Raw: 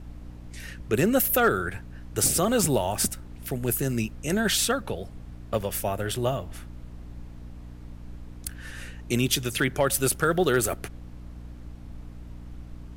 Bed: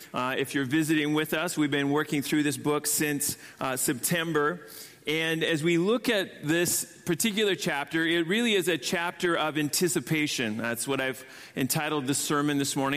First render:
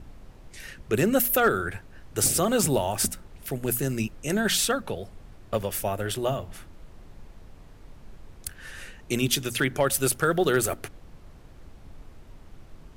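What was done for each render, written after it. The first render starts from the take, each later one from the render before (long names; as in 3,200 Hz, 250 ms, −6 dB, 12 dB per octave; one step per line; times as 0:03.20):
mains-hum notches 60/120/180/240/300 Hz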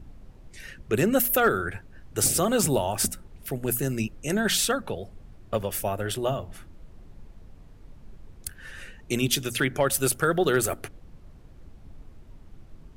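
broadband denoise 6 dB, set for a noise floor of −49 dBFS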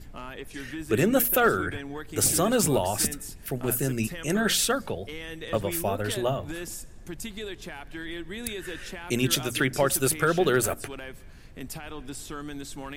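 mix in bed −11.5 dB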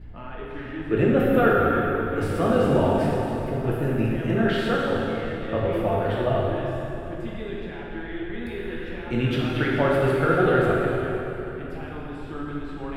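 high-frequency loss of the air 490 metres
dense smooth reverb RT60 3.2 s, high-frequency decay 0.8×, DRR −5 dB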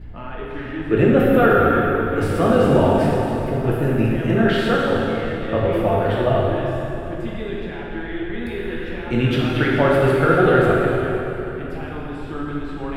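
level +5 dB
brickwall limiter −3 dBFS, peak gain reduction 2.5 dB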